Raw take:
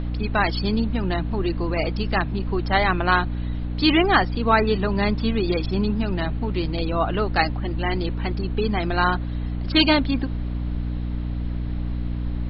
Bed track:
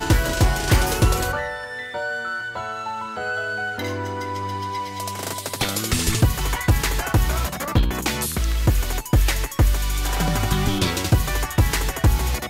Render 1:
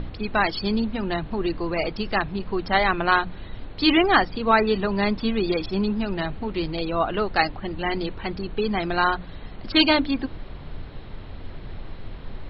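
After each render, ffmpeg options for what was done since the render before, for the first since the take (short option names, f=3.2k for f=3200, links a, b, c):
-af "bandreject=f=60:t=h:w=6,bandreject=f=120:t=h:w=6,bandreject=f=180:t=h:w=6,bandreject=f=240:t=h:w=6,bandreject=f=300:t=h:w=6"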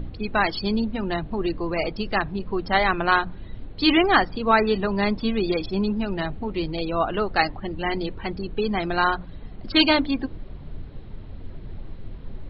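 -af "afftdn=nr=9:nf=-39"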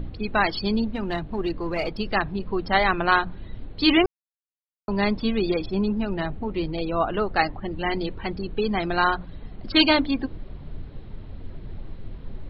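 -filter_complex "[0:a]asplit=3[a][b][c];[a]afade=t=out:st=0.83:d=0.02[d];[b]aeval=exprs='if(lt(val(0),0),0.708*val(0),val(0))':c=same,afade=t=in:st=0.83:d=0.02,afade=t=out:st=1.97:d=0.02[e];[c]afade=t=in:st=1.97:d=0.02[f];[d][e][f]amix=inputs=3:normalize=0,asettb=1/sr,asplit=3[g][h][i];[g]atrim=end=5.504[j];[h]atrim=start=5.5:end=7.72,asetpts=PTS-STARTPTS,afade=t=in:d=0.004:c=qsin,afade=t=out:st=2.216:d=0.004:c=qsin,highshelf=f=4k:g=-8[k];[i]atrim=start=7.716[l];[j][k]acrossfade=d=0.004:c1=hsin:c2=qsin[m];[m][l]acrossfade=d=0.004:c1=qsin:c2=hsin,asplit=3[n][o][p];[n]atrim=end=4.06,asetpts=PTS-STARTPTS,afade=t=out:st=4.056:d=0.004:c=hsin[q];[o]atrim=start=4.06:end=4.88,asetpts=PTS-STARTPTS,volume=0[r];[p]atrim=start=4.88,asetpts=PTS-STARTPTS,afade=t=in:d=0.004:c=hsin[s];[q][r][s]concat=n=3:v=0:a=1"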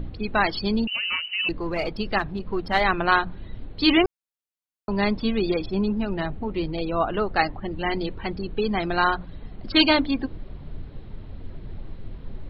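-filter_complex "[0:a]asettb=1/sr,asplit=3[a][b][c];[a]atrim=end=0.874[d];[b]atrim=start=0.87:end=1.49,asetpts=PTS-STARTPTS,afade=t=in:d=0.004:c=qsin,afade=t=out:st=0.616:d=0.004:c=qsin,lowpass=f=2.6k:t=q:w=0.5098,lowpass=f=2.6k:t=q:w=0.6013,lowpass=f=2.6k:t=q:w=0.9,lowpass=f=2.6k:t=q:w=2.563,afreqshift=-3000[e];[c]atrim=start=1.486[f];[d][e]acrossfade=d=0.004:c1=hsin:c2=qsin[g];[g][f]acrossfade=d=0.004:c1=qsin:c2=hsin,asettb=1/sr,asplit=3[h][i][j];[h]atrim=end=2.184[k];[i]atrim=start=2.18:end=2.81,asetpts=PTS-STARTPTS,afade=t=in:d=0.004:c=qsin,afade=t=out:st=0.626:d=0.004:c=qsin,aeval=exprs='if(lt(val(0),0),0.708*val(0),val(0))':c=same[l];[j]atrim=start=2.806[m];[k][l]acrossfade=d=0.004:c1=hsin:c2=qsin[n];[n][m]acrossfade=d=0.004:c1=qsin:c2=hsin"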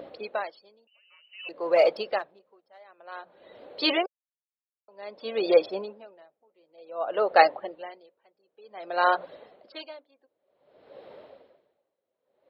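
-af "highpass=f=550:t=q:w=4.9,aeval=exprs='val(0)*pow(10,-37*(0.5-0.5*cos(2*PI*0.54*n/s))/20)':c=same"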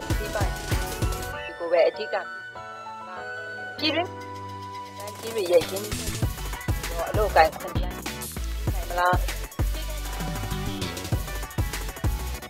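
-filter_complex "[1:a]volume=-9dB[a];[0:a][a]amix=inputs=2:normalize=0"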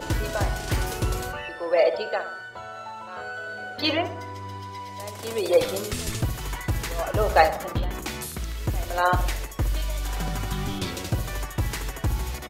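-filter_complex "[0:a]asplit=2[a][b];[b]adelay=62,lowpass=f=2.3k:p=1,volume=-10.5dB,asplit=2[c][d];[d]adelay=62,lowpass=f=2.3k:p=1,volume=0.52,asplit=2[e][f];[f]adelay=62,lowpass=f=2.3k:p=1,volume=0.52,asplit=2[g][h];[h]adelay=62,lowpass=f=2.3k:p=1,volume=0.52,asplit=2[i][j];[j]adelay=62,lowpass=f=2.3k:p=1,volume=0.52,asplit=2[k][l];[l]adelay=62,lowpass=f=2.3k:p=1,volume=0.52[m];[a][c][e][g][i][k][m]amix=inputs=7:normalize=0"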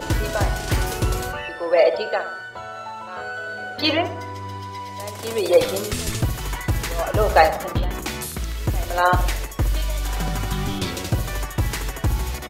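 -af "volume=4dB,alimiter=limit=-1dB:level=0:latency=1"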